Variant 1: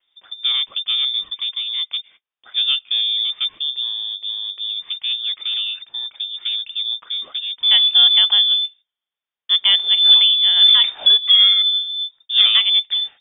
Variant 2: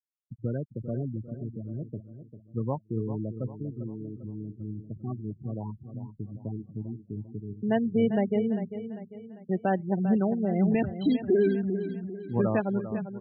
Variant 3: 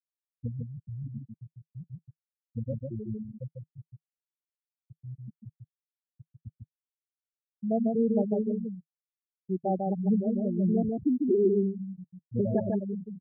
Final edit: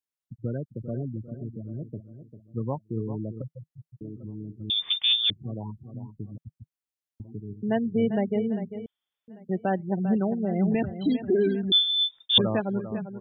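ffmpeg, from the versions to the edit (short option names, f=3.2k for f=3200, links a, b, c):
-filter_complex "[2:a]asplit=2[a][b];[0:a]asplit=3[c][d][e];[1:a]asplit=6[f][g][h][i][j][k];[f]atrim=end=3.422[l];[a]atrim=start=3.418:end=4.012[m];[g]atrim=start=4.008:end=4.702[n];[c]atrim=start=4.698:end=5.302[o];[h]atrim=start=5.298:end=6.382[p];[b]atrim=start=6.378:end=7.202[q];[i]atrim=start=7.198:end=8.862[r];[d]atrim=start=8.858:end=9.282[s];[j]atrim=start=9.278:end=11.722[t];[e]atrim=start=11.718:end=12.382[u];[k]atrim=start=12.378[v];[l][m]acrossfade=d=0.004:c1=hsin:c2=hsin[w];[w][n]acrossfade=d=0.004:c1=hsin:c2=hsin[x];[x][o]acrossfade=d=0.004:c1=hsin:c2=hsin[y];[y][p]acrossfade=d=0.004:c1=hsin:c2=hsin[z];[z][q]acrossfade=d=0.004:c1=hsin:c2=hsin[aa];[aa][r]acrossfade=d=0.004:c1=hsin:c2=hsin[ab];[ab][s]acrossfade=d=0.004:c1=hsin:c2=hsin[ac];[ac][t]acrossfade=d=0.004:c1=hsin:c2=hsin[ad];[ad][u]acrossfade=d=0.004:c1=hsin:c2=hsin[ae];[ae][v]acrossfade=d=0.004:c1=hsin:c2=hsin"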